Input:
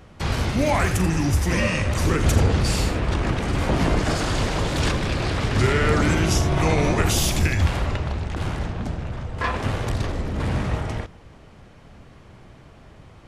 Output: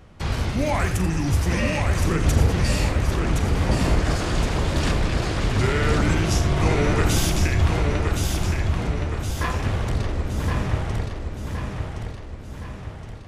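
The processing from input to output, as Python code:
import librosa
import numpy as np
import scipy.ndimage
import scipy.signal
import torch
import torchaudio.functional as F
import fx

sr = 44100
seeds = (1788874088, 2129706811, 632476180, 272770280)

p1 = fx.low_shelf(x, sr, hz=83.0, db=5.0)
p2 = p1 + fx.echo_feedback(p1, sr, ms=1068, feedback_pct=49, wet_db=-5, dry=0)
y = F.gain(torch.from_numpy(p2), -3.0).numpy()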